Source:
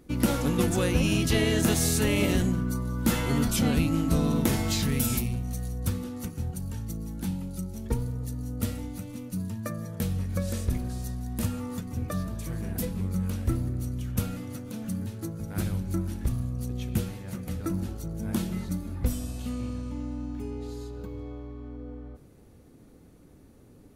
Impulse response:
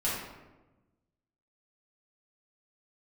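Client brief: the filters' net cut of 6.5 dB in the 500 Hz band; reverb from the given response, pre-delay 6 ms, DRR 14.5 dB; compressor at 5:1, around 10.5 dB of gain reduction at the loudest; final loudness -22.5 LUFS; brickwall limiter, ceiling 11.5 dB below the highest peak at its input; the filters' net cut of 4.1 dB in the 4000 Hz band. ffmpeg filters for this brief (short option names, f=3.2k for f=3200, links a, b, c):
-filter_complex "[0:a]equalizer=f=500:t=o:g=-8.5,equalizer=f=4k:t=o:g=-5.5,acompressor=threshold=-33dB:ratio=5,alimiter=level_in=6.5dB:limit=-24dB:level=0:latency=1,volume=-6.5dB,asplit=2[a][b];[1:a]atrim=start_sample=2205,adelay=6[c];[b][c]afir=irnorm=-1:irlink=0,volume=-22.5dB[d];[a][d]amix=inputs=2:normalize=0,volume=17dB"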